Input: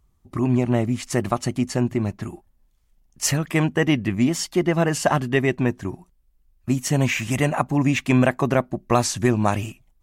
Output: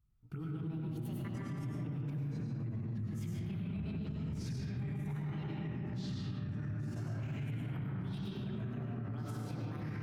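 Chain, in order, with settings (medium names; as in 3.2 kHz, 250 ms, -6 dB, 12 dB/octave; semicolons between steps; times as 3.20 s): sawtooth pitch modulation +8 st, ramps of 1363 ms; Doppler pass-by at 2.13 s, 18 m/s, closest 2.1 m; ever faster or slower copies 175 ms, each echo -5 st, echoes 2, each echo -6 dB; gain riding within 3 dB; dynamic bell 130 Hz, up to +6 dB, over -50 dBFS, Q 0.73; compression, threshold -48 dBFS, peak gain reduction 21 dB; graphic EQ 125/500/1000/8000 Hz +10/-8/-3/-8 dB; algorithmic reverb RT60 4.3 s, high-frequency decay 0.25×, pre-delay 65 ms, DRR -5.5 dB; peak limiter -39 dBFS, peak gain reduction 12.5 dB; trim +6.5 dB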